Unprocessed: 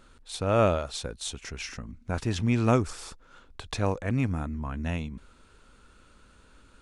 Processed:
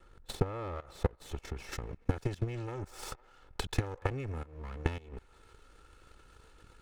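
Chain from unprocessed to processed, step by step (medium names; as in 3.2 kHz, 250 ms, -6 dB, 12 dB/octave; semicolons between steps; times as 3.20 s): comb filter that takes the minimum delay 2.3 ms; feedback echo behind a band-pass 94 ms, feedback 67%, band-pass 1.2 kHz, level -20.5 dB; level held to a coarse grid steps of 16 dB; treble shelf 2.3 kHz -11 dB, from 1.72 s -2.5 dB; compression 8:1, threshold -42 dBFS, peak gain reduction 13 dB; transient shaper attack +12 dB, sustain -2 dB; trim +5.5 dB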